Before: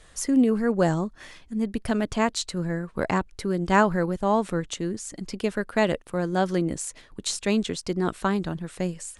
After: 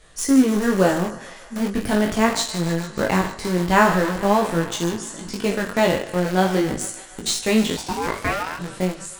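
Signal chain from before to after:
peak hold with a decay on every bin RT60 0.53 s
feedback echo with a high-pass in the loop 148 ms, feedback 85%, high-pass 500 Hz, level −15 dB
in parallel at −8 dB: bit reduction 4 bits
on the sum: chorus effect 0.41 Hz, delay 17.5 ms, depth 4.9 ms
0:07.76–0:08.58: ring modulation 460 Hz → 1,300 Hz
level +3.5 dB

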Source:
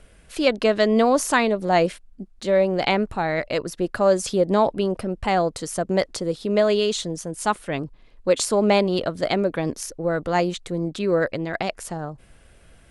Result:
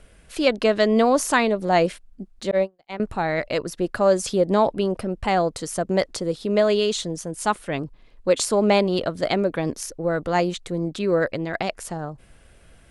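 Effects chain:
0:02.51–0:03.00: noise gate −16 dBFS, range −54 dB

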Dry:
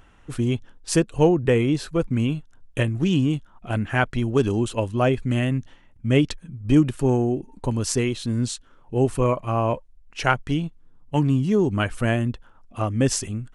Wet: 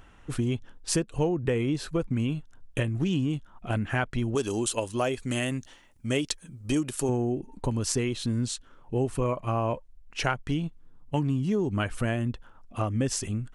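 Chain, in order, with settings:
0:04.35–0:07.09: bass and treble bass −9 dB, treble +12 dB
downward compressor 3 to 1, threshold −25 dBFS, peak gain reduction 10.5 dB

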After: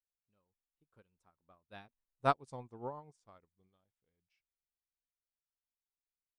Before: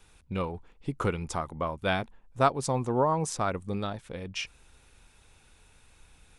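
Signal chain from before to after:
source passing by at 0:02.38, 27 m/s, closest 15 metres
expander for the loud parts 2.5 to 1, over −40 dBFS
level −5 dB

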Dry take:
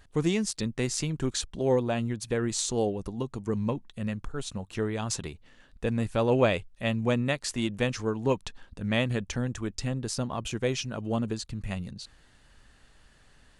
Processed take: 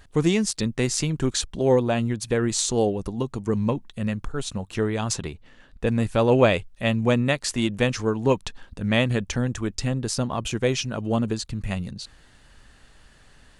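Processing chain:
0:05.13–0:05.87: high-shelf EQ 4,900 Hz −6.5 dB
level +5.5 dB

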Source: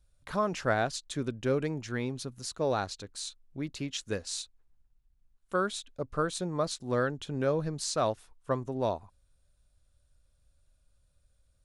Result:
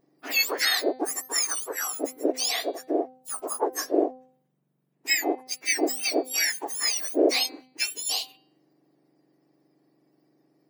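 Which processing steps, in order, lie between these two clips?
frequency axis turned over on the octave scale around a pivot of 1,600 Hz
wrong playback speed 44.1 kHz file played as 48 kHz
hum removal 257.1 Hz, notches 18
level +9 dB

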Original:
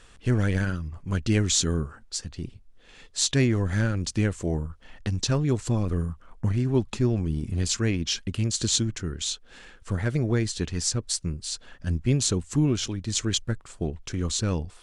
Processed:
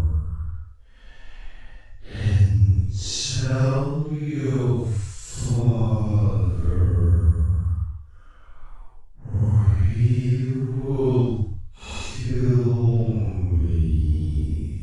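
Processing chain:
low shelf with overshoot 120 Hz +8.5 dB, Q 1.5
extreme stretch with random phases 5.2×, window 0.10 s, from 0:04.63

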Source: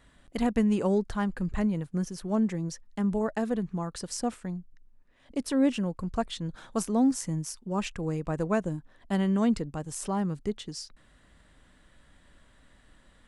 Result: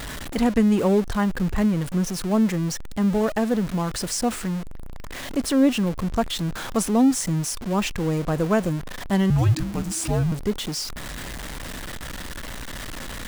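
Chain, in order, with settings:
converter with a step at zero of −33 dBFS
0:09.30–0:10.32: frequency shifter −340 Hz
level +5 dB

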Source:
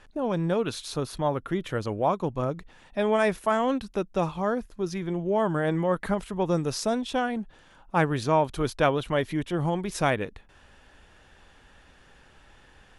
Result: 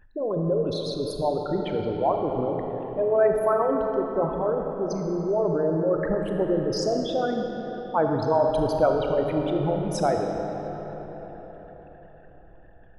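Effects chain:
spectral envelope exaggerated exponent 3
comb and all-pass reverb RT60 4.9 s, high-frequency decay 0.6×, pre-delay 0 ms, DRR 2 dB

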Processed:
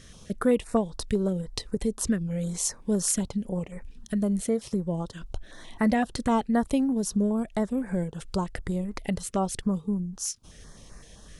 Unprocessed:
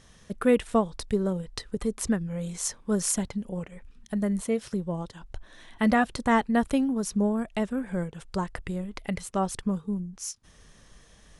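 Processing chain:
downward compressor 1.5 to 1, threshold −38 dBFS, peak gain reduction 8 dB
notch on a step sequencer 7.8 Hz 870–3,200 Hz
level +6.5 dB

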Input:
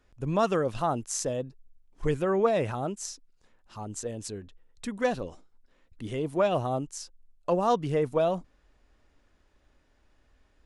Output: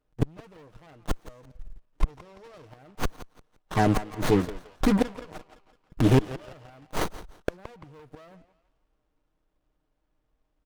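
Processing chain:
comb filter 6.5 ms, depth 59%
leveller curve on the samples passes 5
0:02.10–0:02.68: low-pass with resonance 5,500 Hz, resonance Q 7.2
gate with flip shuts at −11 dBFS, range −36 dB
on a send: feedback echo with a band-pass in the loop 170 ms, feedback 53%, band-pass 1,700 Hz, level −9 dB
on the sum: windowed peak hold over 17 samples

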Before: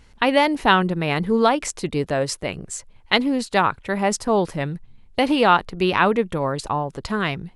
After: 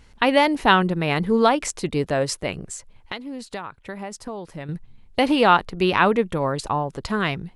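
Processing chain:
0:02.65–0:04.69: downward compressor 6 to 1, threshold −31 dBFS, peak gain reduction 17.5 dB

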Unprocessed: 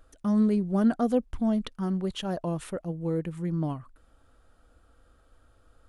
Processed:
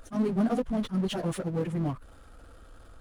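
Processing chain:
time stretch by phase vocoder 0.51×
power curve on the samples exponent 0.7
level that may rise only so fast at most 360 dB per second

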